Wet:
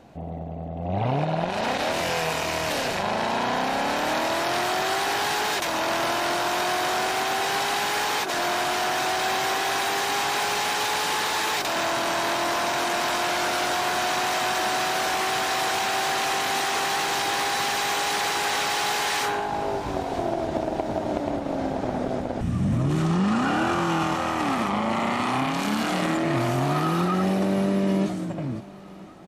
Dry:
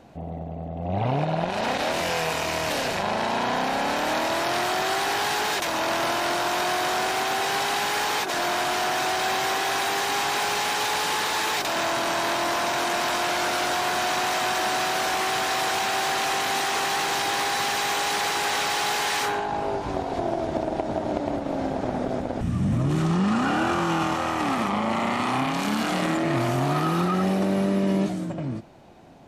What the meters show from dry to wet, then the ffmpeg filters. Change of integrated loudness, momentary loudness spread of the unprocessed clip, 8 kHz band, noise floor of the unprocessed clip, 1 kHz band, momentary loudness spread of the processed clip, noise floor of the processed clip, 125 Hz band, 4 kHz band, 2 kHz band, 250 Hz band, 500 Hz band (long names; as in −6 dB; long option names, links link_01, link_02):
0.0 dB, 5 LU, 0.0 dB, −33 dBFS, 0.0 dB, 5 LU, −32 dBFS, 0.0 dB, 0.0 dB, 0.0 dB, 0.0 dB, 0.0 dB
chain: -af "aecho=1:1:997|1994|2991|3988:0.0794|0.0437|0.024|0.0132"